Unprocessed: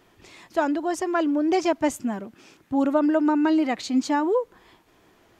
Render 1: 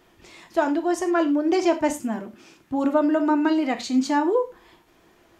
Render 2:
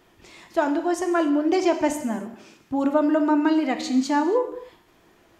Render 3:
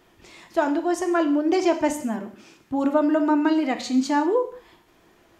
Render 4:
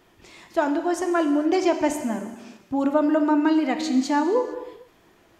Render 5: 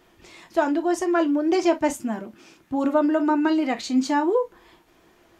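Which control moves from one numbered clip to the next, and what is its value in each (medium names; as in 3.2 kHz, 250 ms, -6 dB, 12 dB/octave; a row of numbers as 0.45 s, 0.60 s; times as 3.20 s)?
gated-style reverb, gate: 130 ms, 320 ms, 210 ms, 490 ms, 80 ms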